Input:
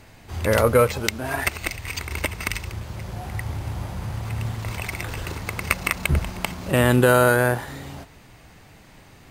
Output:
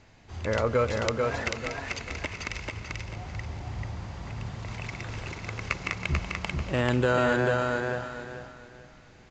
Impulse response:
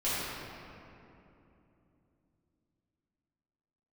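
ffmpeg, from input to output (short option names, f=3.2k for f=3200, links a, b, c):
-filter_complex "[0:a]asplit=2[a][b];[1:a]atrim=start_sample=2205,afade=t=out:st=0.42:d=0.01,atrim=end_sample=18963,adelay=128[c];[b][c]afir=irnorm=-1:irlink=0,volume=-23.5dB[d];[a][d]amix=inputs=2:normalize=0,aresample=16000,aresample=44100,aecho=1:1:440|880|1320|1760:0.708|0.212|0.0637|0.0191,volume=-8dB"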